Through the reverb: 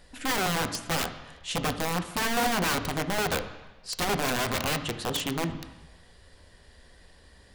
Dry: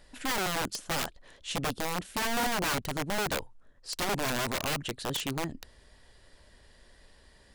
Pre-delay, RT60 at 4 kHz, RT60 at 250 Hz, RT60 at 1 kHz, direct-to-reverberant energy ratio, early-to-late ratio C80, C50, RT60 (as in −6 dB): 3 ms, 1.1 s, 1.0 s, 1.1 s, 7.5 dB, 13.0 dB, 11.0 dB, 1.1 s